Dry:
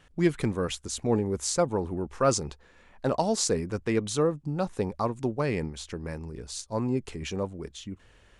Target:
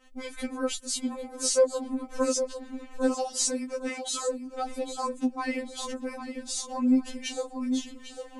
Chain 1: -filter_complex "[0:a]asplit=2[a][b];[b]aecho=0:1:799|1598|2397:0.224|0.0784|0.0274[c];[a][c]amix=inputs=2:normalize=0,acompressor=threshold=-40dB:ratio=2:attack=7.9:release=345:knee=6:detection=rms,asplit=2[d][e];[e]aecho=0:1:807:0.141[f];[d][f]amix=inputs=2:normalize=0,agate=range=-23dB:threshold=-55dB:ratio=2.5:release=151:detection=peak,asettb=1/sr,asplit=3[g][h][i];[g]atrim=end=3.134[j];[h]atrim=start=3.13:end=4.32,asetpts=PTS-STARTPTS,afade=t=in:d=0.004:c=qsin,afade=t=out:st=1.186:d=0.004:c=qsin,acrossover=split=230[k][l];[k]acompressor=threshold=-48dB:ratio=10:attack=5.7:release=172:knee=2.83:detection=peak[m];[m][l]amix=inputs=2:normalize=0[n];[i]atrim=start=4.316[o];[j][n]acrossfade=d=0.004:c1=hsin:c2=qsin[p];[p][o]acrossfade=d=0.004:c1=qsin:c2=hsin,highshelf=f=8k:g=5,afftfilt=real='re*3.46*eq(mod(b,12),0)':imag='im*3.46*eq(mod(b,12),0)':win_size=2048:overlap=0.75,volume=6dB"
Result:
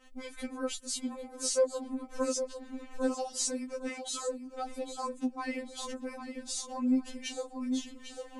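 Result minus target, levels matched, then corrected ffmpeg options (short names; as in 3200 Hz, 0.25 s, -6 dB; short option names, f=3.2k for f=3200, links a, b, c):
compressor: peak gain reduction +5 dB
-filter_complex "[0:a]asplit=2[a][b];[b]aecho=0:1:799|1598|2397:0.224|0.0784|0.0274[c];[a][c]amix=inputs=2:normalize=0,acompressor=threshold=-29.5dB:ratio=2:attack=7.9:release=345:knee=6:detection=rms,asplit=2[d][e];[e]aecho=0:1:807:0.141[f];[d][f]amix=inputs=2:normalize=0,agate=range=-23dB:threshold=-55dB:ratio=2.5:release=151:detection=peak,asettb=1/sr,asplit=3[g][h][i];[g]atrim=end=3.134[j];[h]atrim=start=3.13:end=4.32,asetpts=PTS-STARTPTS,afade=t=in:d=0.004:c=qsin,afade=t=out:st=1.186:d=0.004:c=qsin,acrossover=split=230[k][l];[k]acompressor=threshold=-48dB:ratio=10:attack=5.7:release=172:knee=2.83:detection=peak[m];[m][l]amix=inputs=2:normalize=0[n];[i]atrim=start=4.316[o];[j][n]acrossfade=d=0.004:c1=hsin:c2=qsin[p];[p][o]acrossfade=d=0.004:c1=qsin:c2=hsin,highshelf=f=8k:g=5,afftfilt=real='re*3.46*eq(mod(b,12),0)':imag='im*3.46*eq(mod(b,12),0)':win_size=2048:overlap=0.75,volume=6dB"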